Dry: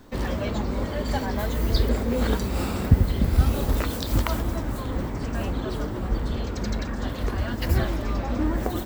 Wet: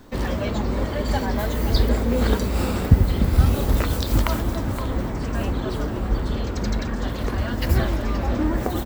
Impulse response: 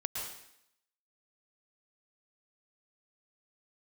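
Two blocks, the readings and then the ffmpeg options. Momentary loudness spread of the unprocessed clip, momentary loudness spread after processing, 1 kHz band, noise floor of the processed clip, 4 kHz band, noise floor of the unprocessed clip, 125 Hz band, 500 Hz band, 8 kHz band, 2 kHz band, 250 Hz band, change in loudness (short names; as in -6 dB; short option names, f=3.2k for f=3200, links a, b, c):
8 LU, 7 LU, +3.0 dB, -28 dBFS, +2.5 dB, -31 dBFS, +3.0 dB, +3.0 dB, +2.5 dB, +3.0 dB, +3.0 dB, +3.0 dB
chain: -filter_complex "[0:a]asplit=2[a][b];[b]adelay=519,volume=-9dB,highshelf=f=4k:g=-11.7[c];[a][c]amix=inputs=2:normalize=0,volume=2.5dB"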